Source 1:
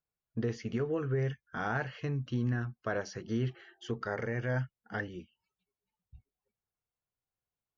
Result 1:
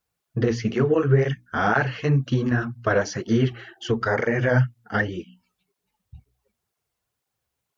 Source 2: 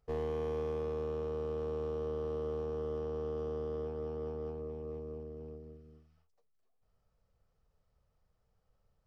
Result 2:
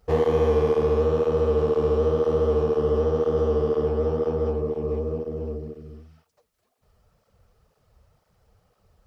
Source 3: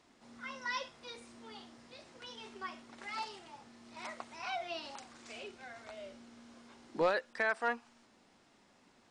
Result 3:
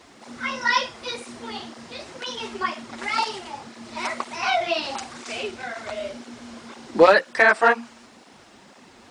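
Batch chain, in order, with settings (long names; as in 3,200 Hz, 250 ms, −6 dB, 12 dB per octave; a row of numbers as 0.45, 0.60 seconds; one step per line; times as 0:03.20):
mains-hum notches 60/120/180/240/300 Hz
through-zero flanger with one copy inverted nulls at 2 Hz, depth 7.7 ms
loudness normalisation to −23 LKFS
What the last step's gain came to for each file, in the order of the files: +16.0, +18.0, +19.5 decibels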